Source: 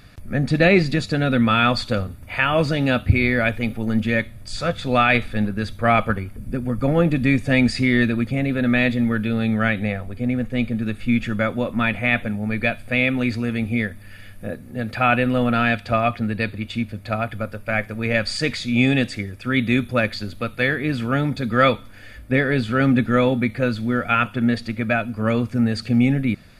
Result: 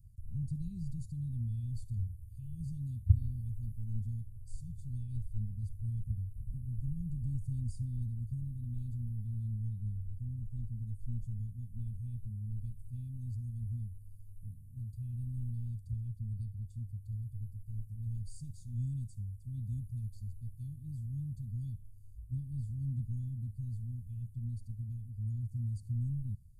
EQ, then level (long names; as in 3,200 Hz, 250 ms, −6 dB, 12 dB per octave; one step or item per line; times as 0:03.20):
inverse Chebyshev band-stop filter 530–2,000 Hz, stop band 80 dB
high-shelf EQ 2,500 Hz −11 dB
−6.5 dB